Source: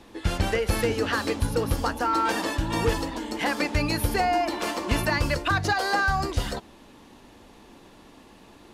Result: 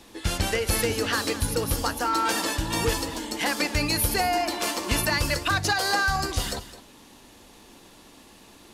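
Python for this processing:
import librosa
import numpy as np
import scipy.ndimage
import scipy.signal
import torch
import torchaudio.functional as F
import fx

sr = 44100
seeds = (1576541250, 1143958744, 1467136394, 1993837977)

p1 = fx.high_shelf(x, sr, hz=3600.0, db=12.0)
p2 = p1 + fx.echo_single(p1, sr, ms=211, db=-15.0, dry=0)
y = F.gain(torch.from_numpy(p2), -2.0).numpy()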